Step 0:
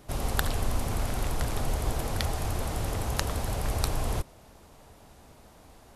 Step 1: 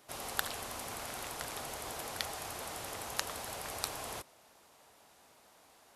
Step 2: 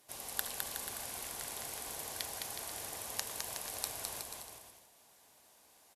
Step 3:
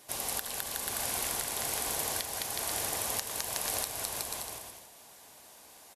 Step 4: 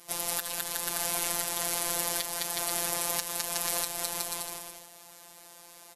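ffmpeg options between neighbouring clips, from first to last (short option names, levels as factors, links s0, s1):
-af "highpass=f=920:p=1,volume=0.708"
-filter_complex "[0:a]aemphasis=mode=production:type=cd,bandreject=f=1300:w=8.9,asplit=2[s0][s1];[s1]aecho=0:1:210|367.5|485.6|574.2|640.7:0.631|0.398|0.251|0.158|0.1[s2];[s0][s2]amix=inputs=2:normalize=0,volume=0.447"
-filter_complex "[0:a]asplit=2[s0][s1];[s1]asoftclip=type=hard:threshold=0.0891,volume=0.668[s2];[s0][s2]amix=inputs=2:normalize=0,alimiter=limit=0.0891:level=0:latency=1:release=311,afftfilt=real='re*gte(hypot(re,im),0.0002)':imag='im*gte(hypot(re,im),0.0002)':win_size=1024:overlap=0.75,volume=1.88"
-af "afftfilt=real='hypot(re,im)*cos(PI*b)':imag='0':win_size=1024:overlap=0.75,volume=2"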